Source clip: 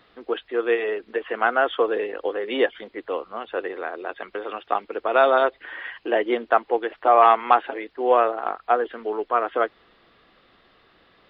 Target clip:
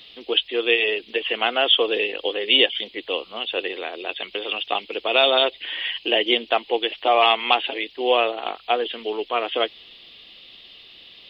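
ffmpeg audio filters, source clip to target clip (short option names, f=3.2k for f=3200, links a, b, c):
-filter_complex "[0:a]highshelf=f=2.1k:t=q:w=3:g=12.5,asplit=2[a][b];[b]alimiter=limit=-8.5dB:level=0:latency=1:release=144,volume=-3dB[c];[a][c]amix=inputs=2:normalize=0,volume=-4dB"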